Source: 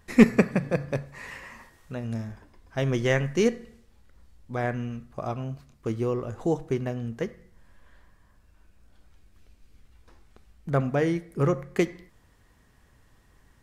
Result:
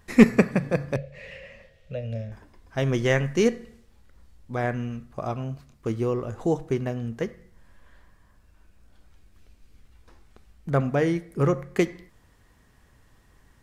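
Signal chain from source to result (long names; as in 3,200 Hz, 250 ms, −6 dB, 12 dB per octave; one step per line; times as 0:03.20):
0:00.96–0:02.32: drawn EQ curve 190 Hz 0 dB, 300 Hz −20 dB, 550 Hz +10 dB, 940 Hz −20 dB, 2,700 Hz +2 dB, 9,200 Hz −18 dB
level +1.5 dB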